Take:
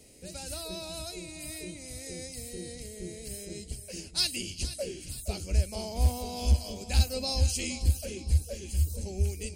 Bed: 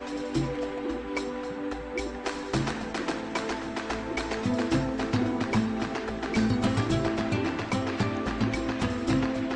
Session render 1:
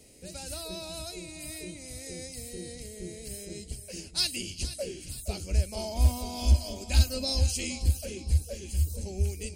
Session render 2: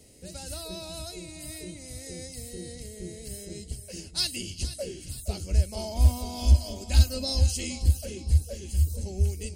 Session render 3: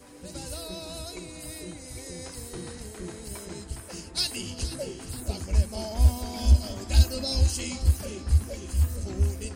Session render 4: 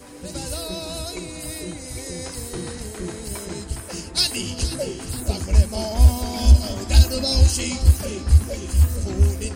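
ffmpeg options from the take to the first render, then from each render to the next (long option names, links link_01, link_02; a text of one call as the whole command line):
ffmpeg -i in.wav -filter_complex "[0:a]asettb=1/sr,asplit=3[link_01][link_02][link_03];[link_01]atrim=end=5.774[link_04];[link_02]atrim=start=5.77:end=7.39,asetpts=PTS-STARTPTS,afade=type=in:duration=0.004:curve=qsin,afade=type=out:start_time=1.616:duration=0.004:curve=qsin,aecho=1:1:3.2:0.65,atrim=end_sample=71442[link_05];[link_03]atrim=start=7.386[link_06];[link_04][link_05]acrossfade=duration=0.004:curve1=hsin:curve2=qsin[link_07];[link_07][link_06]acrossfade=duration=0.004:curve1=qsin:curve2=hsin" out.wav
ffmpeg -i in.wav -af "equalizer=frequency=94:width_type=o:width=1.7:gain=4,bandreject=frequency=2400:width=11" out.wav
ffmpeg -i in.wav -i bed.wav -filter_complex "[1:a]volume=-16dB[link_01];[0:a][link_01]amix=inputs=2:normalize=0" out.wav
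ffmpeg -i in.wav -af "volume=7.5dB,alimiter=limit=-3dB:level=0:latency=1" out.wav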